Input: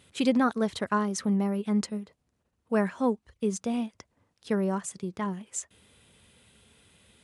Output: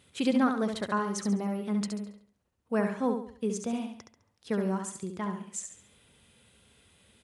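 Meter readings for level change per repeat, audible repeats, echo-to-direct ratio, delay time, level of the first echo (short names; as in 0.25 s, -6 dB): -8.5 dB, 4, -5.5 dB, 69 ms, -6.0 dB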